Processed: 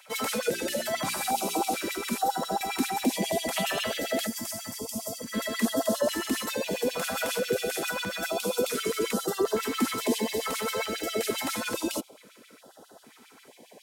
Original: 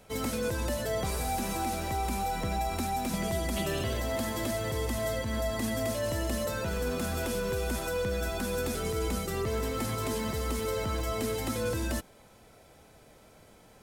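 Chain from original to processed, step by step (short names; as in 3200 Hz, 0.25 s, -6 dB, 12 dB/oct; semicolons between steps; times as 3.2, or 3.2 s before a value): LFO high-pass sine 7.4 Hz 230–3200 Hz; 0.46–1.58 de-hum 58.78 Hz, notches 7; 4.27–5.34 spectral gain 260–4600 Hz -12 dB; in parallel at -11.5 dB: soft clip -25 dBFS, distortion -16 dB; on the sum: stepped notch 2.3 Hz 340–2300 Hz; gain +3 dB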